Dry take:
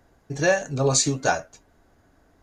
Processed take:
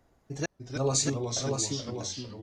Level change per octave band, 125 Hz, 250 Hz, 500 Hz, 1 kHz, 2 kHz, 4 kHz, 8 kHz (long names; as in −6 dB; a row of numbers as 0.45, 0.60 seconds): −4.0, −4.0, −8.5, −11.5, −15.0, −3.0, −4.5 decibels